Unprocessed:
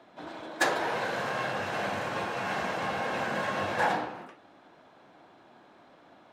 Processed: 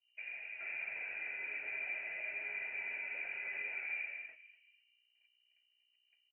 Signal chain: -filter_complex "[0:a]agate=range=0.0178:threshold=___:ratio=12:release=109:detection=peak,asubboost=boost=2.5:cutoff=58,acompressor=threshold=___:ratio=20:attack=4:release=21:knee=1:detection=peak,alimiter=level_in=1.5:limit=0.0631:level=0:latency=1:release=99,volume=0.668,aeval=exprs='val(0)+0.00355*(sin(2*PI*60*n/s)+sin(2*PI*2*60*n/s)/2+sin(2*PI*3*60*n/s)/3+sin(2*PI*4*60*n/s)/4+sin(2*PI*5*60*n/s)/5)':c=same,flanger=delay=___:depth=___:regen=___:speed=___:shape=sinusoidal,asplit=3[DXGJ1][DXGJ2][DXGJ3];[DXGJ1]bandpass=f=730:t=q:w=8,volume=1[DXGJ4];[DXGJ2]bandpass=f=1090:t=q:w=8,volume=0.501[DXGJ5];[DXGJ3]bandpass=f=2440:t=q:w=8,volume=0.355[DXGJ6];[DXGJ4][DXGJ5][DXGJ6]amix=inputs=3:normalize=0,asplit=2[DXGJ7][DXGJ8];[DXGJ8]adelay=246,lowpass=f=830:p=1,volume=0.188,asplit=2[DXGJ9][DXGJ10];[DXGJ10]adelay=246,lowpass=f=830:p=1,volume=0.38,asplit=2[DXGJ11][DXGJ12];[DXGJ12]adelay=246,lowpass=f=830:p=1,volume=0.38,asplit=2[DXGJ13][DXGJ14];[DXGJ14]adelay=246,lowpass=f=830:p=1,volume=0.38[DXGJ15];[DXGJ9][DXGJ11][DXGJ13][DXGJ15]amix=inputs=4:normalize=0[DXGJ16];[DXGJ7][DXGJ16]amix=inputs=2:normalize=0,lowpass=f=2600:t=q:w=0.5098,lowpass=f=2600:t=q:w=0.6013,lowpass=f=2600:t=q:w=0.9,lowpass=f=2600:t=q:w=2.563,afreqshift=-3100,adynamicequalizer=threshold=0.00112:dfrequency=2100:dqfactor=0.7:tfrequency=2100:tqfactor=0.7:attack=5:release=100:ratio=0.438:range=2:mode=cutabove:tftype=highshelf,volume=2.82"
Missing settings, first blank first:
0.00251, 0.0251, 10, 1.9, 78, 0.42